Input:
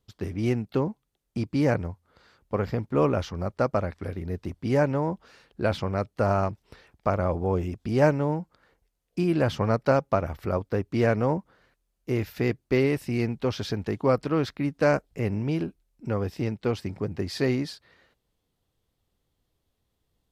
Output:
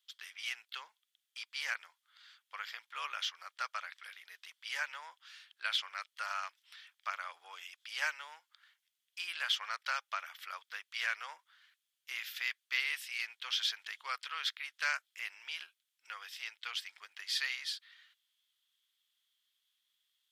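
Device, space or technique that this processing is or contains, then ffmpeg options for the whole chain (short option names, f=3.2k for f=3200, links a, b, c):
headphones lying on a table: -af "highpass=f=1.5k:w=0.5412,highpass=f=1.5k:w=1.3066,equalizer=f=3.3k:t=o:w=0.33:g=10.5"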